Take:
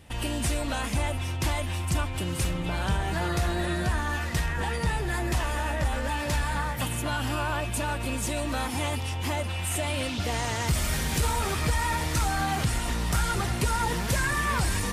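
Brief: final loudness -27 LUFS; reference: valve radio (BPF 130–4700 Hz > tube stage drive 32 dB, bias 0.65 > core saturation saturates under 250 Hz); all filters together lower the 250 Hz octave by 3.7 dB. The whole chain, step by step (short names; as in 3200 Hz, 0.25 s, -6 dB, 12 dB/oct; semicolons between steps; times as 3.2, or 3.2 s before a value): BPF 130–4700 Hz; bell 250 Hz -4.5 dB; tube stage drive 32 dB, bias 0.65; core saturation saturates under 250 Hz; gain +11 dB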